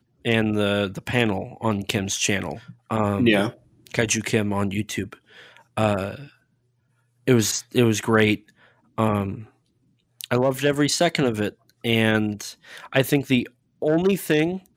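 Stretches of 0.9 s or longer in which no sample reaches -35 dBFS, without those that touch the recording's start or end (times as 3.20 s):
6.26–7.28 s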